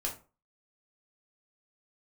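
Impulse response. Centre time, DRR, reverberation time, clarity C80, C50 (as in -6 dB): 19 ms, -2.0 dB, 0.35 s, 16.0 dB, 9.5 dB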